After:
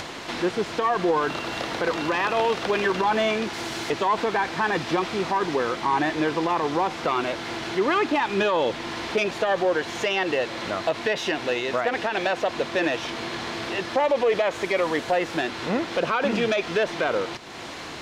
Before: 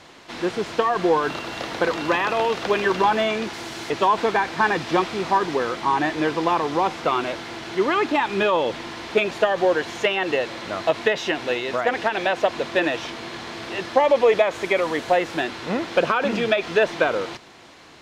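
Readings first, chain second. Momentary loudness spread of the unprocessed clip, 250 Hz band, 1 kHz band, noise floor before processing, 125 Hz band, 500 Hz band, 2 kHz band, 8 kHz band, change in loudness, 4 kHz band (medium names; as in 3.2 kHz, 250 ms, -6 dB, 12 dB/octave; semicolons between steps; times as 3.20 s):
9 LU, -1.0 dB, -2.5 dB, -46 dBFS, -0.5 dB, -2.5 dB, -2.0 dB, +0.5 dB, -2.5 dB, -1.0 dB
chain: self-modulated delay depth 0.072 ms; peak limiter -13.5 dBFS, peak gain reduction 7.5 dB; upward compressor, threshold -25 dBFS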